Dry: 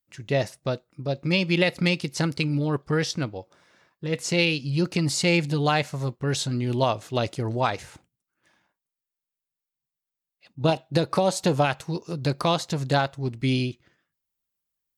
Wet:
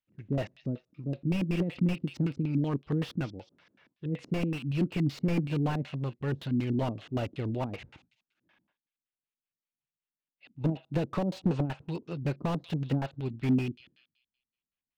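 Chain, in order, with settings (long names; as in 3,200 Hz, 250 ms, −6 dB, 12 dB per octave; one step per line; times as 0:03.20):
auto-filter low-pass square 5.3 Hz 260–2,800 Hz
delay with a high-pass on its return 189 ms, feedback 33%, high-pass 4,200 Hz, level −12.5 dB
slew-rate limiting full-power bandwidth 50 Hz
level −6 dB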